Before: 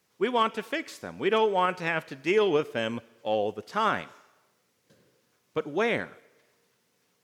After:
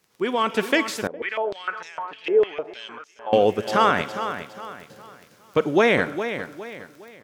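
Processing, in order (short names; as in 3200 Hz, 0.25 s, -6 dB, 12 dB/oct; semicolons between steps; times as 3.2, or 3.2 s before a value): limiter -19.5 dBFS, peak gain reduction 7.5 dB; AGC gain up to 8.5 dB; crackle 22/s -38 dBFS; feedback echo 0.41 s, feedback 36%, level -10 dB; 1.07–3.33 stepped band-pass 6.6 Hz 460–6100 Hz; gain +3.5 dB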